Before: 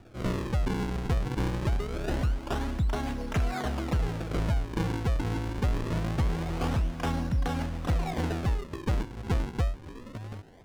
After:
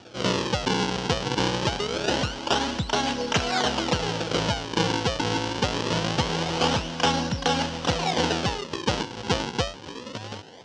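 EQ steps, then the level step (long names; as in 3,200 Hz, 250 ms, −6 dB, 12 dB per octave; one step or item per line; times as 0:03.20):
loudspeaker in its box 140–8,400 Hz, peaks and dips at 500 Hz +7 dB, 890 Hz +8 dB, 1,500 Hz +4 dB, 3,000 Hz +9 dB, 5,800 Hz +4 dB
parametric band 4,800 Hz +12 dB 1.3 octaves
+4.5 dB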